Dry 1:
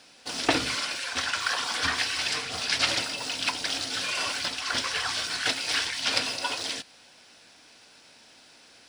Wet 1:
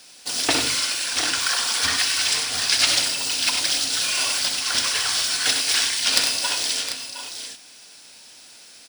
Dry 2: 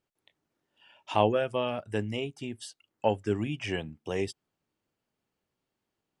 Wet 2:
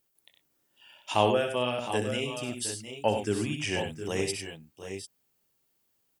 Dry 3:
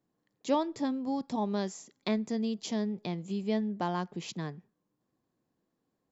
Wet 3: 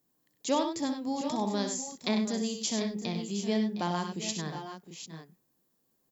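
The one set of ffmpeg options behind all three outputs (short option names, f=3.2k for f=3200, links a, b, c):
-filter_complex "[0:a]aemphasis=mode=production:type=75fm,aeval=exprs='(mod(1.41*val(0)+1,2)-1)/1.41':c=same,asplit=2[a][b];[b]aecho=0:1:64|97|712|743:0.355|0.376|0.237|0.282[c];[a][c]amix=inputs=2:normalize=0"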